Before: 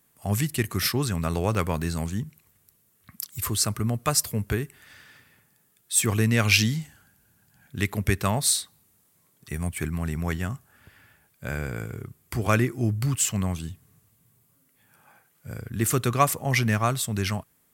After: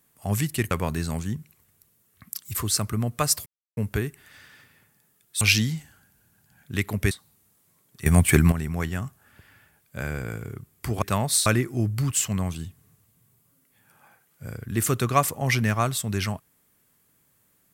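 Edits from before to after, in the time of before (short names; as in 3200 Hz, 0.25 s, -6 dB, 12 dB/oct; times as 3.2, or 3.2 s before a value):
0.71–1.58 cut
4.33 insert silence 0.31 s
5.97–6.45 cut
8.15–8.59 move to 12.5
9.54–10 gain +12 dB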